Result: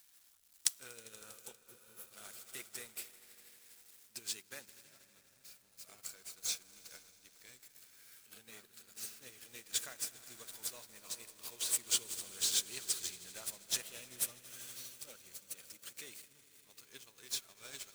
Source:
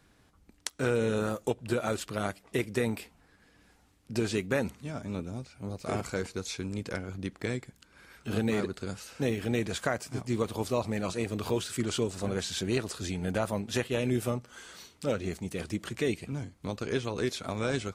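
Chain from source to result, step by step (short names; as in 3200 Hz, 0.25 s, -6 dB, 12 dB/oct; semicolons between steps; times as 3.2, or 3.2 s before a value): zero-crossing step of -38.5 dBFS; pre-emphasis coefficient 0.97; on a send: swelling echo 80 ms, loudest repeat 5, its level -13 dB; on the sum: spectral repair 1.63–2.08, 500–10000 Hz before; low shelf 82 Hz +7.5 dB; notches 50/100 Hz; in parallel at -7 dB: bit-crush 7-bit; on the sum: upward expander 2.5:1, over -46 dBFS; gain +3 dB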